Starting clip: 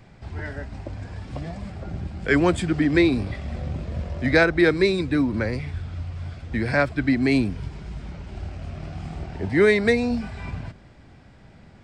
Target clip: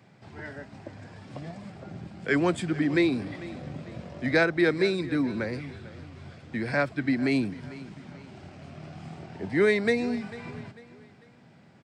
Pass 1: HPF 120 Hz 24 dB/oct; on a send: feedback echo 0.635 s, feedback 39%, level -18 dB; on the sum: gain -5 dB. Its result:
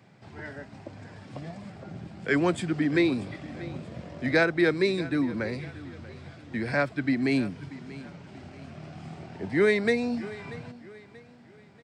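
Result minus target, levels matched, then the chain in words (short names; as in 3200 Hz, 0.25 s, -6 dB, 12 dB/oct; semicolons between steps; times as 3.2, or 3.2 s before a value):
echo 0.189 s late
HPF 120 Hz 24 dB/oct; on a send: feedback echo 0.446 s, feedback 39%, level -18 dB; on the sum: gain -5 dB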